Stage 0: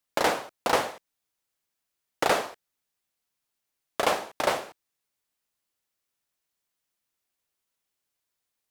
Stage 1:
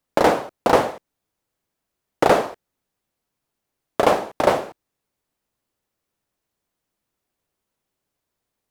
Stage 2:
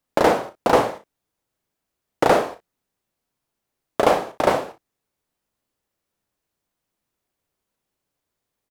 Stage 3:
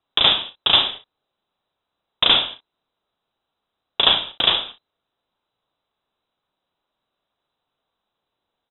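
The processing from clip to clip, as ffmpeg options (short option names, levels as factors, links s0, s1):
-af "tiltshelf=f=1100:g=6.5,volume=2"
-af "aecho=1:1:35|59:0.335|0.178,volume=0.891"
-af "aexciter=amount=11.2:drive=2.7:freq=3000,lowpass=f=3400:t=q:w=0.5098,lowpass=f=3400:t=q:w=0.6013,lowpass=f=3400:t=q:w=0.9,lowpass=f=3400:t=q:w=2.563,afreqshift=-4000"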